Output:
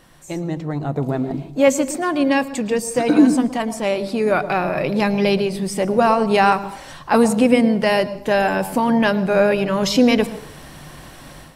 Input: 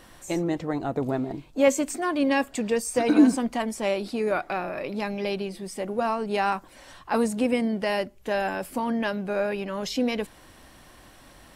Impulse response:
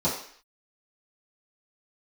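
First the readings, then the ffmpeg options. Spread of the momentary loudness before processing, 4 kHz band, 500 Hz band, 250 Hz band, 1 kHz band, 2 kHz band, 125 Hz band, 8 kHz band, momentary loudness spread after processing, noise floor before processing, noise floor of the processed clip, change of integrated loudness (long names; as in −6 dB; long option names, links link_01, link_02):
9 LU, +9.0 dB, +8.0 dB, +7.5 dB, +9.0 dB, +8.0 dB, +11.0 dB, +6.0 dB, 10 LU, −52 dBFS, −40 dBFS, +8.0 dB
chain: -filter_complex "[0:a]equalizer=frequency=150:width_type=o:width=0.27:gain=12,dynaudnorm=framelen=670:gausssize=3:maxgain=13dB,asplit=2[link_01][link_02];[1:a]atrim=start_sample=2205,adelay=109[link_03];[link_02][link_03]afir=irnorm=-1:irlink=0,volume=-26.5dB[link_04];[link_01][link_04]amix=inputs=2:normalize=0,volume=-1dB"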